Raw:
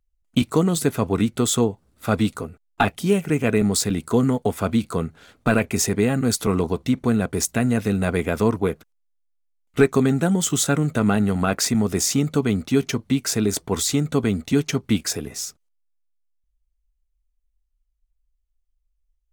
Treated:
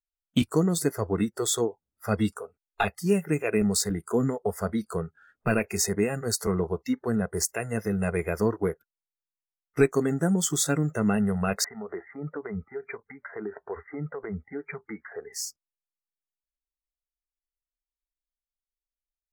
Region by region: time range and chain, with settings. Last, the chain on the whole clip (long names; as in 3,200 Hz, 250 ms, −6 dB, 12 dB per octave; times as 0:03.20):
0:11.64–0:15.33: linear-phase brick-wall low-pass 2,400 Hz + downward compressor 10 to 1, threshold −20 dBFS
whole clip: notch filter 4,000 Hz, Q 17; noise reduction from a noise print of the clip's start 24 dB; dynamic equaliser 1,000 Hz, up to −4 dB, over −37 dBFS, Q 1.1; level −3.5 dB